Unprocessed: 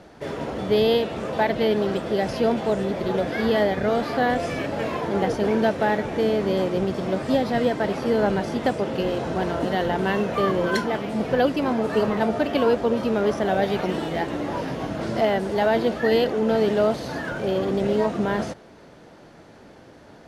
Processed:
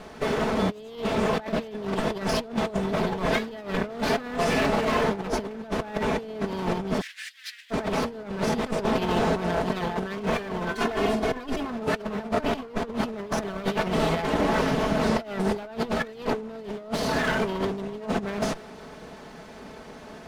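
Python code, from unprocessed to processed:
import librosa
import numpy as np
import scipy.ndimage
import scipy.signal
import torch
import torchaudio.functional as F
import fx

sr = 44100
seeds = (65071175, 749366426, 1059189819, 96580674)

y = fx.lower_of_two(x, sr, delay_ms=4.6)
y = fx.comb(y, sr, ms=2.8, depth=0.53, at=(10.74, 11.7))
y = fx.over_compress(y, sr, threshold_db=-28.0, ratio=-0.5)
y = fx.cheby1_highpass(y, sr, hz=1700.0, order=5, at=(7.0, 7.7), fade=0.02)
y = y * librosa.db_to_amplitude(1.5)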